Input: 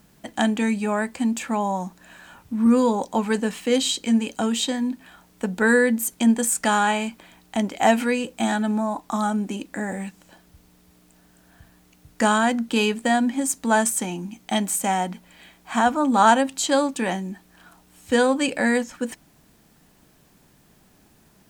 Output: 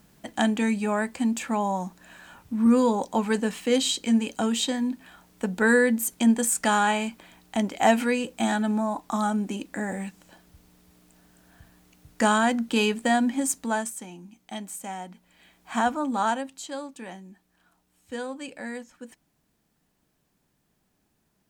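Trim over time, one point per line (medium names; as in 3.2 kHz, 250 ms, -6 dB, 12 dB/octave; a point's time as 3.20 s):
13.51 s -2 dB
13.96 s -13 dB
15.11 s -13 dB
15.80 s -4 dB
16.70 s -15 dB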